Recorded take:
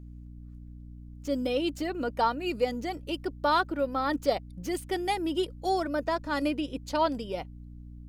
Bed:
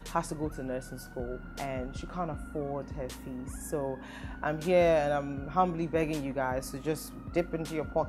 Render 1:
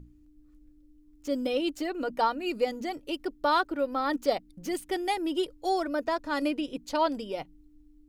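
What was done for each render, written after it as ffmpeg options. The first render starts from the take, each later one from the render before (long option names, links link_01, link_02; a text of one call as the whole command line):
ffmpeg -i in.wav -af "bandreject=frequency=60:width_type=h:width=6,bandreject=frequency=120:width_type=h:width=6,bandreject=frequency=180:width_type=h:width=6,bandreject=frequency=240:width_type=h:width=6" out.wav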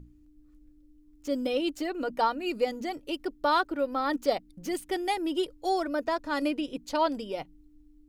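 ffmpeg -i in.wav -af anull out.wav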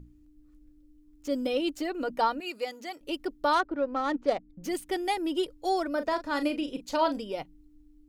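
ffmpeg -i in.wav -filter_complex "[0:a]asettb=1/sr,asplit=3[link_01][link_02][link_03];[link_01]atrim=end=2.404[link_04];[link_02]atrim=start=2.4:end=3.01,asetpts=PTS-STARTPTS,afade=type=in:duration=0.004:curve=qsin,afade=type=out:start_time=0.606:duration=0.004:curve=qsin,highpass=frequency=920:poles=1[link_05];[link_03]atrim=start=3.006[link_06];[link_04][link_05]acrossfade=duration=0.004:curve1=hsin:curve2=qsin[link_07];[link_07][link_06]acrossfade=duration=0.004:curve1=qsin:curve2=hsin,asettb=1/sr,asplit=3[link_08][link_09][link_10];[link_08]atrim=end=3.534[link_11];[link_09]atrim=start=3.53:end=4.64,asetpts=PTS-STARTPTS,afade=type=in:duration=0.004:curve=qsin,afade=type=out:start_time=1.106:duration=0.004:curve=qsin,adynamicsmooth=sensitivity=2.5:basefreq=1700[link_12];[link_10]atrim=start=4.636[link_13];[link_11][link_12]acrossfade=duration=0.004:curve1=hsin:curve2=qsin[link_14];[link_14][link_13]acrossfade=duration=0.004:curve1=qsin:curve2=hsin,asettb=1/sr,asplit=3[link_15][link_16][link_17];[link_15]atrim=end=5.924[link_18];[link_16]atrim=start=5.92:end=7.19,asetpts=PTS-STARTPTS,afade=type=in:duration=0.004:curve=qsin,afade=type=out:start_time=1.266:duration=0.004:curve=qsin,asplit=2[link_19][link_20];[link_20]adelay=38,volume=-10dB[link_21];[link_19][link_21]amix=inputs=2:normalize=0,atrim=end_sample=56007[link_22];[link_17]atrim=start=7.186[link_23];[link_18][link_22]acrossfade=duration=0.004:curve1=hsin:curve2=qsin[link_24];[link_24][link_23]acrossfade=duration=0.004:curve1=qsin:curve2=hsin" out.wav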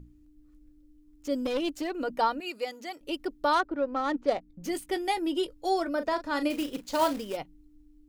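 ffmpeg -i in.wav -filter_complex "[0:a]asettb=1/sr,asplit=3[link_01][link_02][link_03];[link_01]atrim=end=1.394[link_04];[link_02]atrim=start=1.39:end=1.91,asetpts=PTS-STARTPTS,afade=type=in:duration=0.004:curve=qsin,afade=type=out:start_time=0.516:duration=0.004:curve=qsin,aeval=exprs='clip(val(0),-1,0.0376)':channel_layout=same[link_05];[link_03]atrim=start=1.906[link_06];[link_04][link_05]acrossfade=duration=0.004:curve1=hsin:curve2=qsin[link_07];[link_07][link_06]acrossfade=duration=0.004:curve1=qsin:curve2=hsin,asettb=1/sr,asplit=3[link_08][link_09][link_10];[link_08]atrim=end=4.334[link_11];[link_09]atrim=start=4.33:end=5.93,asetpts=PTS-STARTPTS,afade=type=in:duration=0.004:curve=qsin,afade=type=out:start_time=1.596:duration=0.004:curve=qsin,asplit=2[link_12][link_13];[link_13]adelay=18,volume=-11.5dB[link_14];[link_12][link_14]amix=inputs=2:normalize=0,atrim=end_sample=70560[link_15];[link_10]atrim=start=5.926[link_16];[link_11][link_15]acrossfade=duration=0.004:curve1=hsin:curve2=qsin[link_17];[link_17][link_16]acrossfade=duration=0.004:curve1=qsin:curve2=hsin,asettb=1/sr,asplit=3[link_18][link_19][link_20];[link_18]atrim=end=6.504[link_21];[link_19]atrim=start=6.5:end=7.37,asetpts=PTS-STARTPTS,afade=type=in:duration=0.004:curve=qsin,afade=type=out:start_time=0.866:duration=0.004:curve=qsin,acrusher=bits=3:mode=log:mix=0:aa=0.000001[link_22];[link_20]atrim=start=7.366[link_23];[link_21][link_22]acrossfade=duration=0.004:curve1=hsin:curve2=qsin[link_24];[link_24][link_23]acrossfade=duration=0.004:curve1=qsin:curve2=hsin" out.wav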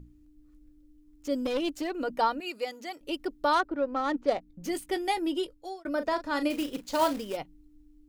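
ffmpeg -i in.wav -filter_complex "[0:a]asplit=2[link_01][link_02];[link_01]atrim=end=5.85,asetpts=PTS-STARTPTS,afade=type=out:start_time=5.29:duration=0.56[link_03];[link_02]atrim=start=5.85,asetpts=PTS-STARTPTS,afade=type=in:duration=0.004:curve=hsin[link_04];[link_03][link_04]concat=n=2:v=0:a=1" out.wav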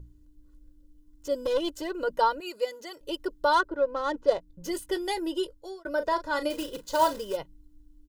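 ffmpeg -i in.wav -af "equalizer=frequency=2300:width_type=o:width=0.25:gain=-14,aecho=1:1:2:0.73" out.wav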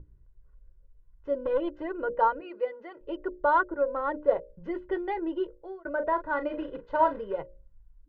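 ffmpeg -i in.wav -af "lowpass=frequency=2000:width=0.5412,lowpass=frequency=2000:width=1.3066,bandreject=frequency=60:width_type=h:width=6,bandreject=frequency=120:width_type=h:width=6,bandreject=frequency=180:width_type=h:width=6,bandreject=frequency=240:width_type=h:width=6,bandreject=frequency=300:width_type=h:width=6,bandreject=frequency=360:width_type=h:width=6,bandreject=frequency=420:width_type=h:width=6,bandreject=frequency=480:width_type=h:width=6,bandreject=frequency=540:width_type=h:width=6,bandreject=frequency=600:width_type=h:width=6" out.wav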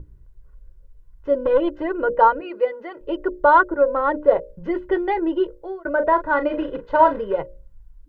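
ffmpeg -i in.wav -af "volume=9.5dB,alimiter=limit=-3dB:level=0:latency=1" out.wav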